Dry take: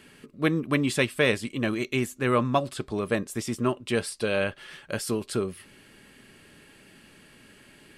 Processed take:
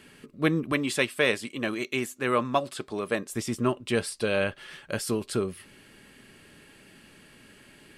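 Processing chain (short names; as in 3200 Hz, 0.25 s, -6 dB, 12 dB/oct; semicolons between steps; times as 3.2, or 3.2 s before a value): 0.72–3.32 HPF 320 Hz 6 dB/oct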